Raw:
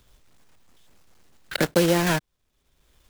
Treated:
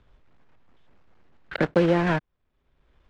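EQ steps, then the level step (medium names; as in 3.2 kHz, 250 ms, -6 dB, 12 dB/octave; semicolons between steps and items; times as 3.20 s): low-pass 2.1 kHz 12 dB/octave; 0.0 dB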